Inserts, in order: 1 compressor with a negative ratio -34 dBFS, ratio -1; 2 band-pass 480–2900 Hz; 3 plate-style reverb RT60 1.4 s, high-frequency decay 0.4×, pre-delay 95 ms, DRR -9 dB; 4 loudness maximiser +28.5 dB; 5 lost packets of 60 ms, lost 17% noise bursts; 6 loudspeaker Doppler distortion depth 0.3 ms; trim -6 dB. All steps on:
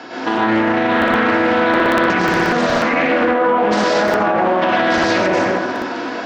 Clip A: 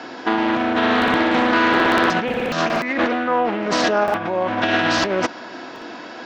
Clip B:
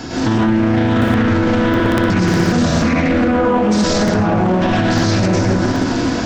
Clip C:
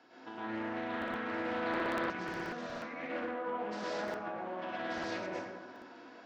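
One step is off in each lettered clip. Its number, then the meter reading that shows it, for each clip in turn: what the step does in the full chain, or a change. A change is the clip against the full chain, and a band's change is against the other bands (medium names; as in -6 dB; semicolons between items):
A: 3, momentary loudness spread change +8 LU; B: 2, 125 Hz band +14.5 dB; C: 4, crest factor change +3.0 dB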